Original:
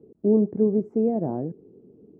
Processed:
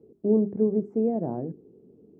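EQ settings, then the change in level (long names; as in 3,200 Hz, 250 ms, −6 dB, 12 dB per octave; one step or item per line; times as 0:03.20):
mains-hum notches 50/100/150/200/250/300/350/400 Hz
−2.0 dB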